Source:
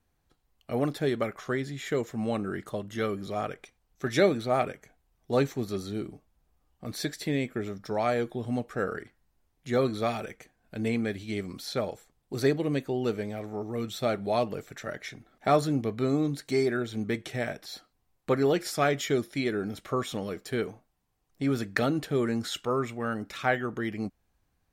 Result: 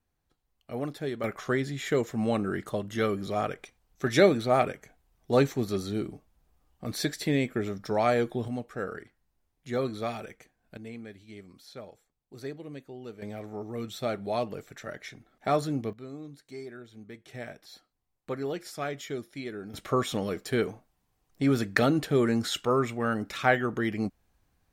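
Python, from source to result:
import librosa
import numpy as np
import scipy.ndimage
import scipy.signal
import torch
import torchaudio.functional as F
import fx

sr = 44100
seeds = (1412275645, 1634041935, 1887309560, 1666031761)

y = fx.gain(x, sr, db=fx.steps((0.0, -5.5), (1.24, 2.5), (8.48, -4.0), (10.77, -13.5), (13.22, -3.0), (15.93, -15.5), (17.28, -8.5), (19.74, 3.0)))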